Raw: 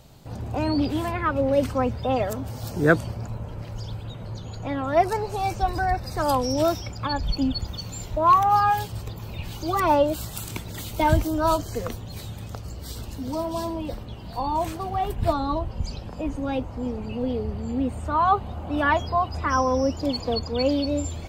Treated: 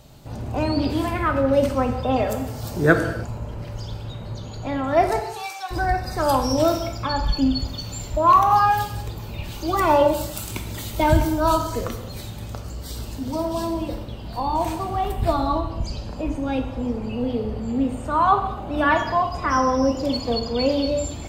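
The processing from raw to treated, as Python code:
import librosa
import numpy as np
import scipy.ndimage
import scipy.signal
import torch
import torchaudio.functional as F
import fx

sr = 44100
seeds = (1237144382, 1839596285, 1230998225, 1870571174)

y = fx.highpass(x, sr, hz=1300.0, slope=12, at=(5.19, 5.7), fade=0.02)
y = fx.rev_gated(y, sr, seeds[0], gate_ms=330, shape='falling', drr_db=4.5)
y = F.gain(torch.from_numpy(y), 1.5).numpy()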